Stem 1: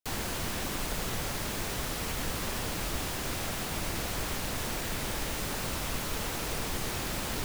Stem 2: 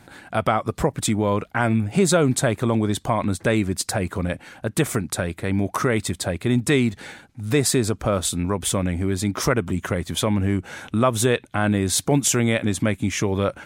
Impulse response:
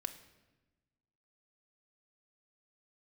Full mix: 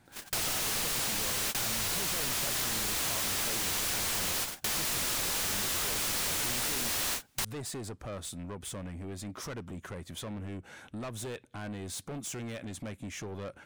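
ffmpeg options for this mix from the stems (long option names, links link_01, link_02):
-filter_complex "[0:a]asplit=2[link_01][link_02];[link_02]highpass=frequency=720:poles=1,volume=30dB,asoftclip=type=tanh:threshold=-19.5dB[link_03];[link_01][link_03]amix=inputs=2:normalize=0,lowpass=frequency=4400:poles=1,volume=-6dB,aeval=exprs='(mod(20*val(0)+1,2)-1)/20':channel_layout=same,volume=2.5dB[link_04];[1:a]asoftclip=type=tanh:threshold=-22.5dB,volume=-13.5dB,asplit=3[link_05][link_06][link_07];[link_06]volume=-21dB[link_08];[link_07]apad=whole_len=328390[link_09];[link_04][link_09]sidechaingate=range=-43dB:threshold=-53dB:ratio=16:detection=peak[link_10];[2:a]atrim=start_sample=2205[link_11];[link_08][link_11]afir=irnorm=-1:irlink=0[link_12];[link_10][link_05][link_12]amix=inputs=3:normalize=0,acompressor=threshold=-30dB:ratio=6"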